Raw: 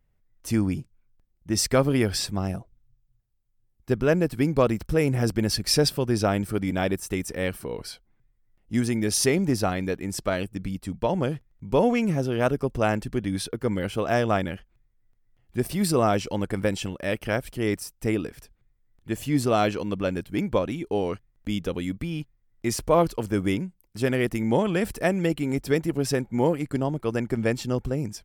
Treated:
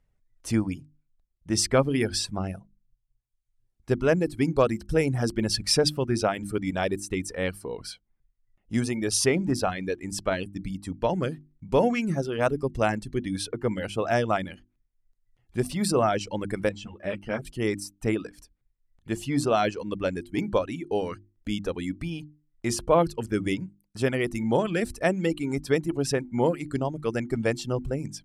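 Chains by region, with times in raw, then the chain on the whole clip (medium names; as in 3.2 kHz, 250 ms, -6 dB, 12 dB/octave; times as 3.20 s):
16.69–17.45 s: low-pass 2.4 kHz 6 dB/octave + three-phase chorus
whole clip: reverb removal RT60 0.95 s; low-pass 11 kHz 24 dB/octave; hum notches 50/100/150/200/250/300/350 Hz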